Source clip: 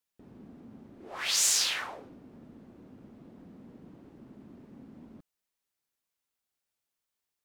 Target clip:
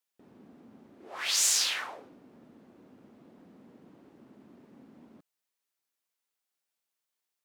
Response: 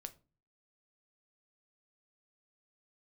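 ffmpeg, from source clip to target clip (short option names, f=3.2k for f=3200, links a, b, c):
-af "highpass=f=330:p=1"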